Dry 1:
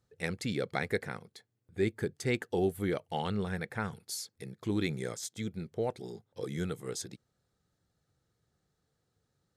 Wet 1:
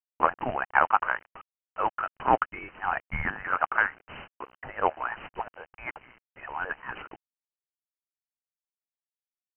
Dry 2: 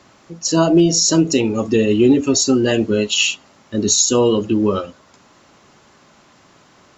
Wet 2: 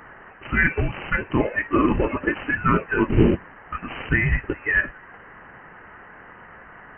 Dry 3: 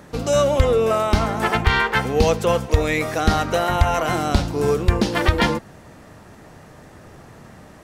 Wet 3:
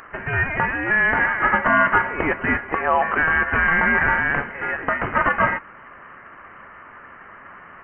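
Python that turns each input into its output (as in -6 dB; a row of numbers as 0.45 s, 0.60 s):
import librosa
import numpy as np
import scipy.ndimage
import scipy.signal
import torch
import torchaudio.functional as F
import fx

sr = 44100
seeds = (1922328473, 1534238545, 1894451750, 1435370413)

p1 = scipy.signal.sosfilt(scipy.signal.butter(4, 1300.0, 'highpass', fs=sr, output='sos'), x)
p2 = fx.over_compress(p1, sr, threshold_db=-29.0, ratio=-1.0)
p3 = p1 + (p2 * librosa.db_to_amplitude(1.0))
p4 = fx.quant_companded(p3, sr, bits=4)
p5 = fx.freq_invert(p4, sr, carrier_hz=3000)
y = librosa.util.normalize(p5) * 10.0 ** (-3 / 20.0)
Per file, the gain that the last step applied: +10.0 dB, +2.5 dB, +4.0 dB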